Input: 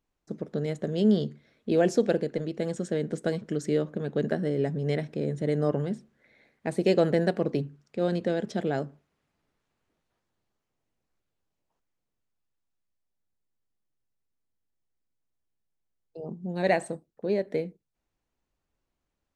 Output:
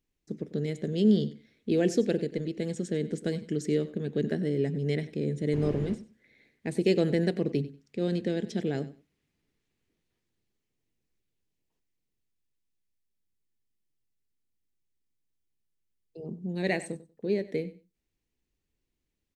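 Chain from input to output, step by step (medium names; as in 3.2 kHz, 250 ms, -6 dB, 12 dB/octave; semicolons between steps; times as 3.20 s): 5.52–5.94 s: wind noise 460 Hz -37 dBFS; high-order bell 910 Hz -10 dB; feedback delay 95 ms, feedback 18%, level -17 dB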